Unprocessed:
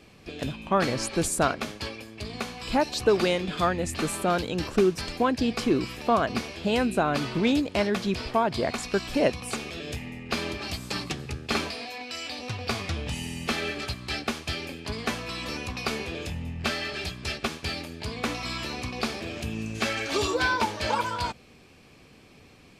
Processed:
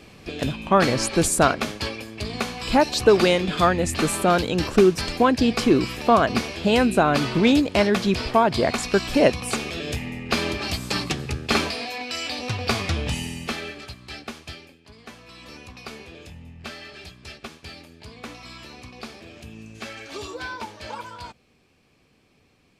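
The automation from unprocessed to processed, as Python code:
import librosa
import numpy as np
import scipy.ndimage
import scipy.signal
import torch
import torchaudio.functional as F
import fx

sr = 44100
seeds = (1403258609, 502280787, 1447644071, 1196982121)

y = fx.gain(x, sr, db=fx.line((13.1, 6.0), (13.82, -6.0), (14.49, -6.0), (14.8, -16.5), (15.54, -8.5)))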